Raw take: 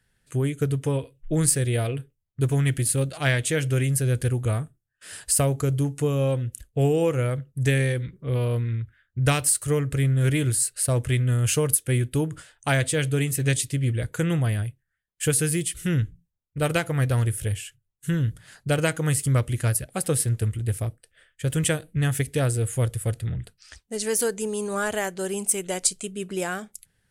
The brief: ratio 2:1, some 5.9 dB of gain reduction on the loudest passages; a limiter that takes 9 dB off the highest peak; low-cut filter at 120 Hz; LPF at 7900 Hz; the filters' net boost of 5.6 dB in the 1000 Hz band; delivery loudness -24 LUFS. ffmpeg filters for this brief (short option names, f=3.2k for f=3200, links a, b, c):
-af "highpass=120,lowpass=7.9k,equalizer=f=1k:t=o:g=8,acompressor=threshold=-27dB:ratio=2,volume=7dB,alimiter=limit=-13.5dB:level=0:latency=1"